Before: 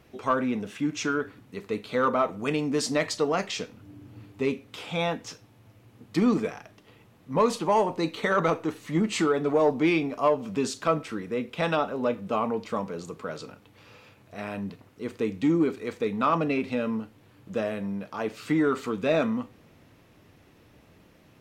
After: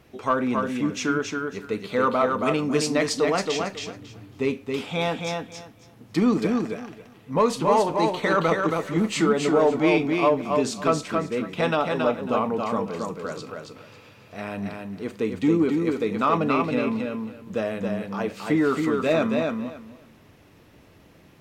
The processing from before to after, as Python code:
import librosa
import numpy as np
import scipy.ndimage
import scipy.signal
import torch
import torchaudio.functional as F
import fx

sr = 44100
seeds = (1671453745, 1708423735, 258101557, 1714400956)

y = fx.echo_feedback(x, sr, ms=274, feedback_pct=19, wet_db=-4.0)
y = F.gain(torch.from_numpy(y), 2.0).numpy()